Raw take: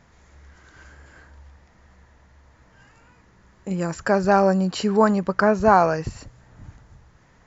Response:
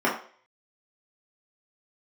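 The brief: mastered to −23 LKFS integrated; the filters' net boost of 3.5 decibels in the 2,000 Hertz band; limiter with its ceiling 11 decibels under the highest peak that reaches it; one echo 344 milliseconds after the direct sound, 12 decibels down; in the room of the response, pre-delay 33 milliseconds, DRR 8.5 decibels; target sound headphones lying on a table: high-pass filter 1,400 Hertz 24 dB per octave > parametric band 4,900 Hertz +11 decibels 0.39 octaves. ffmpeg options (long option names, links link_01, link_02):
-filter_complex "[0:a]equalizer=frequency=2000:width_type=o:gain=7,alimiter=limit=-11dB:level=0:latency=1,aecho=1:1:344:0.251,asplit=2[link_01][link_02];[1:a]atrim=start_sample=2205,adelay=33[link_03];[link_02][link_03]afir=irnorm=-1:irlink=0,volume=-24.5dB[link_04];[link_01][link_04]amix=inputs=2:normalize=0,highpass=frequency=1400:width=0.5412,highpass=frequency=1400:width=1.3066,equalizer=frequency=4900:width_type=o:width=0.39:gain=11,volume=7dB"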